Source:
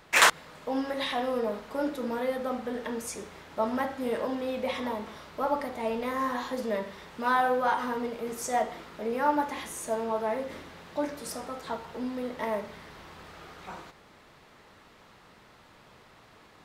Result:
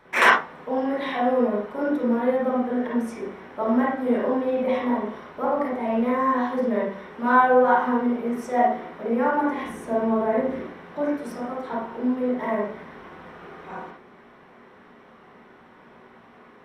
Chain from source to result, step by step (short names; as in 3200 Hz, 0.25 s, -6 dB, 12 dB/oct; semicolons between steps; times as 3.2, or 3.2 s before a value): 9.65–10.62 low shelf 260 Hz +8 dB; reverb RT60 0.40 s, pre-delay 34 ms, DRR -4.5 dB; gain -11 dB